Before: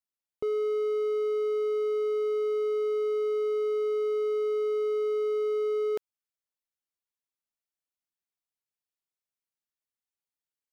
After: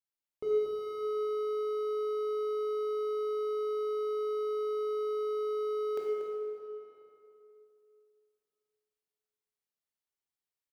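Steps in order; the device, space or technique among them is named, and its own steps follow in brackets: cave (echo 0.236 s -12.5 dB; reverb RT60 2.9 s, pre-delay 15 ms, DRR -4 dB); gain -7 dB

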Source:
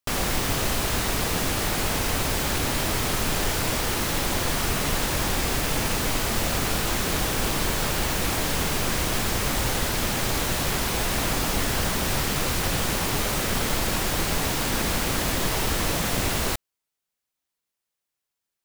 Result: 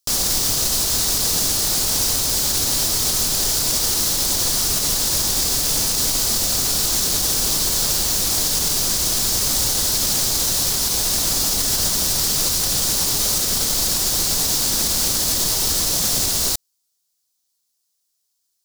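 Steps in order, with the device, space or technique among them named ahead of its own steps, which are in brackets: over-bright horn tweeter (resonant high shelf 3400 Hz +12.5 dB, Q 1.5; limiter -9.5 dBFS, peak gain reduction 6.5 dB)

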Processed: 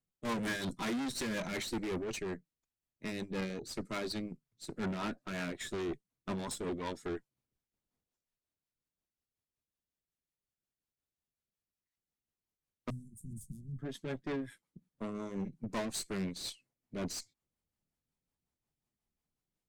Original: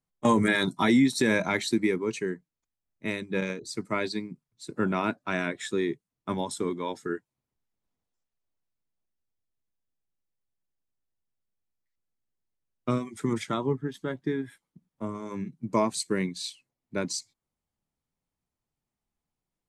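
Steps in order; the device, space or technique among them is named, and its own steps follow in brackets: overdriven rotary cabinet (tube stage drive 34 dB, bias 0.6; rotary speaker horn 5.5 Hz); 12.9–13.79 Chebyshev band-stop 170–9200 Hz, order 3; gain +2 dB

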